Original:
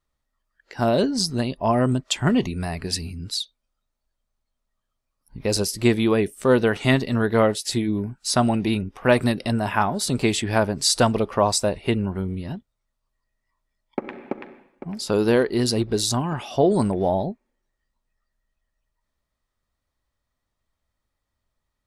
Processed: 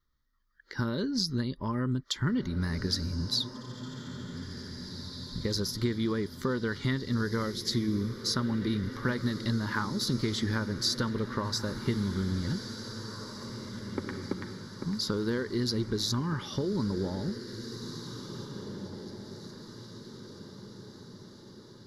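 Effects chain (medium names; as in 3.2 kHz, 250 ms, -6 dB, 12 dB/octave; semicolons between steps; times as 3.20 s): compression 4:1, threshold -27 dBFS, peak gain reduction 13 dB; static phaser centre 2.6 kHz, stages 6; on a send: echo that smears into a reverb 1953 ms, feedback 51%, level -10 dB; on the sum: trim +1.5 dB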